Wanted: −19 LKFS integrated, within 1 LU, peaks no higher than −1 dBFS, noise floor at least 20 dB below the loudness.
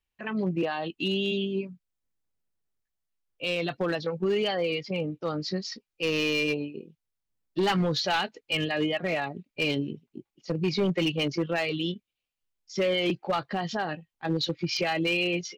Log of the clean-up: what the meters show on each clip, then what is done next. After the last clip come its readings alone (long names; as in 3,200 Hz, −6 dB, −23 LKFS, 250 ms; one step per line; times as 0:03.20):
share of clipped samples 1.1%; peaks flattened at −20.0 dBFS; integrated loudness −28.5 LKFS; sample peak −20.0 dBFS; target loudness −19.0 LKFS
→ clipped peaks rebuilt −20 dBFS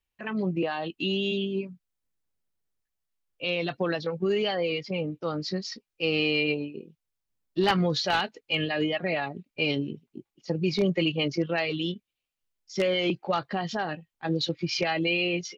share of clipped samples 0.0%; integrated loudness −28.0 LKFS; sample peak −11.0 dBFS; target loudness −19.0 LKFS
→ level +9 dB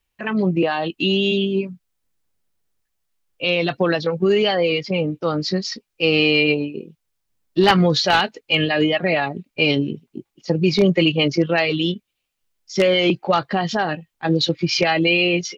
integrated loudness −19.0 LKFS; sample peak −2.0 dBFS; background noise floor −77 dBFS